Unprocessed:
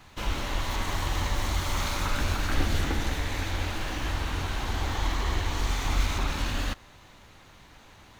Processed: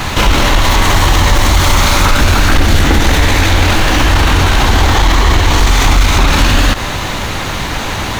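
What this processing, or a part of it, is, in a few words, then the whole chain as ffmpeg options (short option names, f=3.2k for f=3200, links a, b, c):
loud club master: -af "acompressor=threshold=-28dB:ratio=2.5,asoftclip=type=hard:threshold=-24dB,alimiter=level_in=35.5dB:limit=-1dB:release=50:level=0:latency=1,volume=-1dB"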